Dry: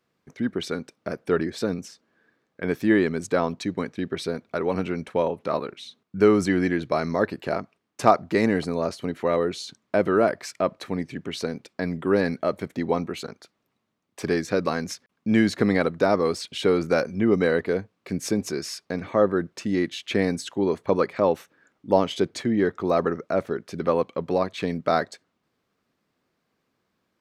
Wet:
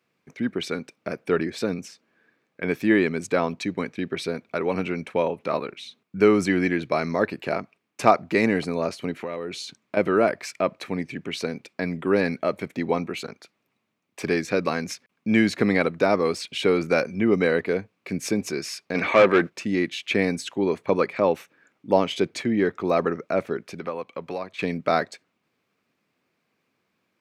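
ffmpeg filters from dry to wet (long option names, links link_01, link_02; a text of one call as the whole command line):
ffmpeg -i in.wav -filter_complex "[0:a]asettb=1/sr,asplit=3[link_01][link_02][link_03];[link_01]atrim=end=9.164[link_04];[link_02]atrim=start=9.16:end=9.97,asetpts=PTS-STARTPTS,afade=type=in:duration=0.004:curve=qsin,afade=type=out:start_time=0.806:duration=0.004:curve=qsin,acompressor=threshold=-28dB:ratio=4:attack=3.2:release=140:knee=1:detection=peak[link_05];[link_03]atrim=start=9.966[link_06];[link_04][link_05]acrossfade=duration=0.004:curve1=hsin:curve2=qsin[link_07];[link_07][link_06]acrossfade=duration=0.004:curve1=qsin:curve2=hsin,asplit=3[link_08][link_09][link_10];[link_08]afade=type=out:start_time=18.94:duration=0.02[link_11];[link_09]asplit=2[link_12][link_13];[link_13]highpass=frequency=720:poles=1,volume=20dB,asoftclip=type=tanh:threshold=-7dB[link_14];[link_12][link_14]amix=inputs=2:normalize=0,lowpass=frequency=5100:poles=1,volume=-6dB,afade=type=in:start_time=18.94:duration=0.02,afade=type=out:start_time=19.48:duration=0.02[link_15];[link_10]afade=type=in:start_time=19.48:duration=0.02[link_16];[link_11][link_15][link_16]amix=inputs=3:normalize=0,asettb=1/sr,asplit=3[link_17][link_18][link_19];[link_17]atrim=end=23.714[link_20];[link_18]atrim=start=23.71:end=24.59,asetpts=PTS-STARTPTS,afade=type=in:duration=0.004:curve=qsin,afade=type=out:start_time=0.876:duration=0.004:curve=qsin,acrossover=split=610|1400[link_21][link_22][link_23];[link_21]acompressor=threshold=-35dB:ratio=4[link_24];[link_22]acompressor=threshold=-33dB:ratio=4[link_25];[link_23]acompressor=threshold=-48dB:ratio=4[link_26];[link_24][link_25][link_26]amix=inputs=3:normalize=0[link_27];[link_19]atrim=start=24.586[link_28];[link_20][link_27]acrossfade=duration=0.004:curve1=hsin:curve2=qsin[link_29];[link_29][link_28]acrossfade=duration=0.004:curve1=qsin:curve2=hsin,highpass=100,equalizer=frequency=2400:width=3.3:gain=8" out.wav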